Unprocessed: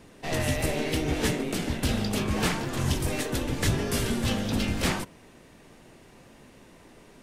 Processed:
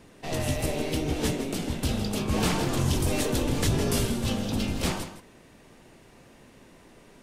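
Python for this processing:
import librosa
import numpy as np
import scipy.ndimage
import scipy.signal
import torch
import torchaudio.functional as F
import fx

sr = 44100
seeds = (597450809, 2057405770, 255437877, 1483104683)

y = x + 10.0 ** (-12.0 / 20.0) * np.pad(x, (int(161 * sr / 1000.0), 0))[:len(x)]
y = fx.dynamic_eq(y, sr, hz=1800.0, q=1.6, threshold_db=-46.0, ratio=4.0, max_db=-6)
y = fx.env_flatten(y, sr, amount_pct=50, at=(2.29, 4.06))
y = F.gain(torch.from_numpy(y), -1.0).numpy()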